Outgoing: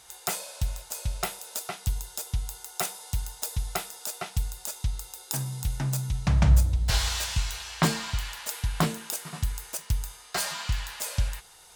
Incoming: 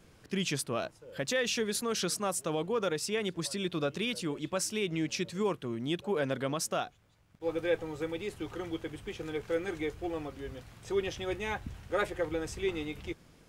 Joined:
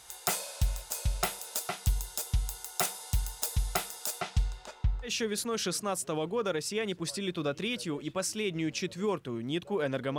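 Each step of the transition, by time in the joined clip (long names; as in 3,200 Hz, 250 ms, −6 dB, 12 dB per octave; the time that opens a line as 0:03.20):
outgoing
0:04.20–0:05.12: low-pass filter 7,700 Hz → 1,100 Hz
0:05.07: continue with incoming from 0:01.44, crossfade 0.10 s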